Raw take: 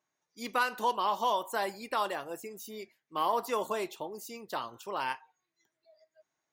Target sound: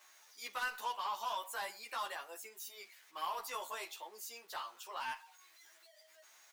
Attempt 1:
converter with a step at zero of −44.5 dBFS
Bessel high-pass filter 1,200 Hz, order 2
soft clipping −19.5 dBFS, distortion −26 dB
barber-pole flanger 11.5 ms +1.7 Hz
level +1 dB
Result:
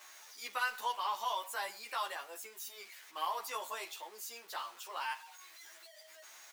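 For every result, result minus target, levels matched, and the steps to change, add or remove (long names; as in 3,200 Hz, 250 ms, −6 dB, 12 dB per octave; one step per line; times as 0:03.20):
soft clipping: distortion −14 dB; converter with a step at zero: distortion +8 dB
change: soft clipping −30.5 dBFS, distortion −12 dB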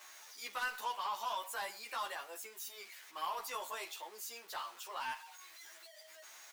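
converter with a step at zero: distortion +8 dB
change: converter with a step at zero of −52.5 dBFS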